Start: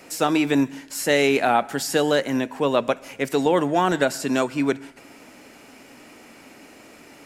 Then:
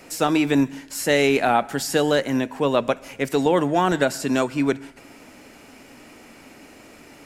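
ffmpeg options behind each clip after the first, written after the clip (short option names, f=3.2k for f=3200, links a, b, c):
-af "lowshelf=f=92:g=9.5"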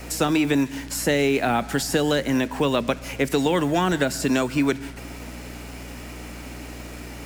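-filter_complex "[0:a]aeval=exprs='val(0)+0.00631*(sin(2*PI*60*n/s)+sin(2*PI*2*60*n/s)/2+sin(2*PI*3*60*n/s)/3+sin(2*PI*4*60*n/s)/4+sin(2*PI*5*60*n/s)/5)':c=same,acrossover=split=330|1400[a][b][c];[a]acompressor=threshold=-29dB:ratio=4[d];[b]acompressor=threshold=-32dB:ratio=4[e];[c]acompressor=threshold=-33dB:ratio=4[f];[d][e][f]amix=inputs=3:normalize=0,acrusher=bits=7:mix=0:aa=0.5,volume=6dB"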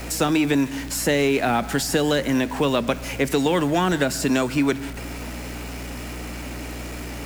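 -af "aeval=exprs='val(0)+0.5*0.0224*sgn(val(0))':c=same"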